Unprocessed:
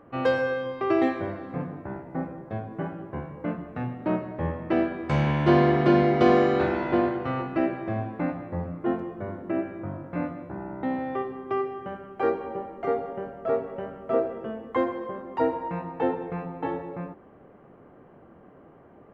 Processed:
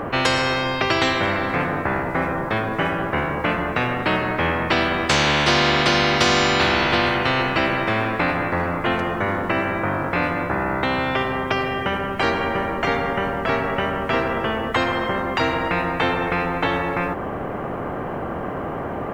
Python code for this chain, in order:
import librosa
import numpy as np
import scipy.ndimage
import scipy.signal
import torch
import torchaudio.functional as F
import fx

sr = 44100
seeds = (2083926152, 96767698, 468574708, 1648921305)

y = fx.spectral_comp(x, sr, ratio=4.0)
y = F.gain(torch.from_numpy(y), 3.5).numpy()